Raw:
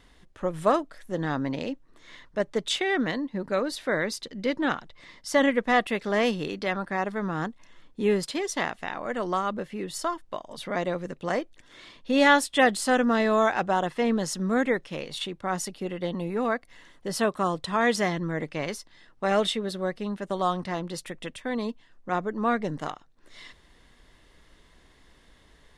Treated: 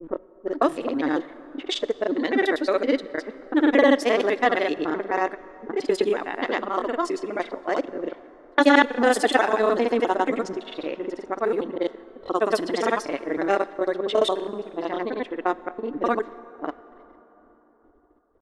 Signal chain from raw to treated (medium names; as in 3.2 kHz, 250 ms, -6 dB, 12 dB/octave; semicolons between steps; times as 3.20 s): slices played last to first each 114 ms, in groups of 5; gate with hold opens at -45 dBFS; resonant low shelf 230 Hz -9.5 dB, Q 3; granulator 100 ms, grains 20 per s, pitch spread up and down by 0 st; level-controlled noise filter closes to 440 Hz, open at -22 dBFS; tempo 1.4×; plate-style reverb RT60 4.2 s, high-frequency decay 0.5×, DRR 16.5 dB; trim +3.5 dB